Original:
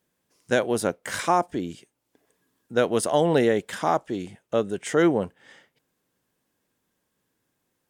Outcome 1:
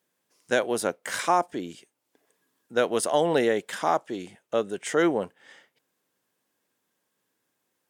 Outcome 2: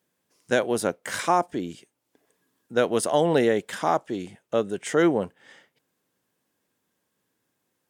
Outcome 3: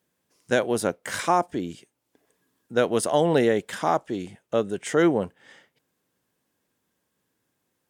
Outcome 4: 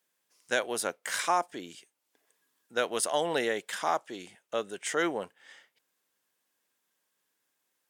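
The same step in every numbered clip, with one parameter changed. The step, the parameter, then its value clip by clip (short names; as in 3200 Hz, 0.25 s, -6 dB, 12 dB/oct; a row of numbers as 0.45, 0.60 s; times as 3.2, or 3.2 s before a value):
HPF, cutoff: 360, 120, 44, 1300 Hz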